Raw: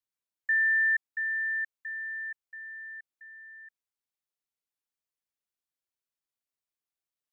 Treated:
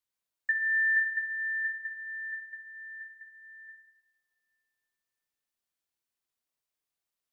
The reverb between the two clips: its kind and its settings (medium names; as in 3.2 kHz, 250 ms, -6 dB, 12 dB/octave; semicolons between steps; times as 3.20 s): two-slope reverb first 0.84 s, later 3.5 s, from -27 dB, DRR 3.5 dB; trim +1.5 dB